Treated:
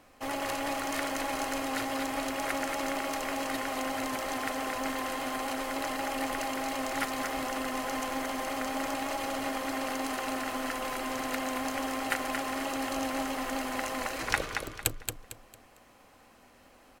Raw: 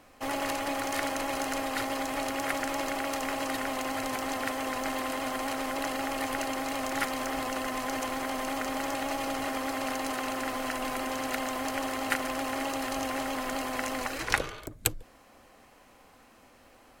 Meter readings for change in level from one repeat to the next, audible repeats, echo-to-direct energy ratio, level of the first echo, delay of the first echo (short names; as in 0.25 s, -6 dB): -10.0 dB, 3, -5.5 dB, -6.0 dB, 0.226 s